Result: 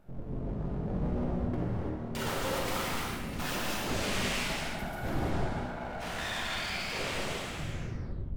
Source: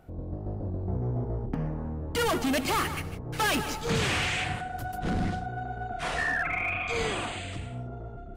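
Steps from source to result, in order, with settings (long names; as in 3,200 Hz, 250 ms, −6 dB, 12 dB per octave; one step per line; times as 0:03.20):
turntable brake at the end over 1.01 s
low-shelf EQ 150 Hz +10 dB
full-wave rectification
reverb whose tail is shaped and stops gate 370 ms flat, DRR −4 dB
level −7.5 dB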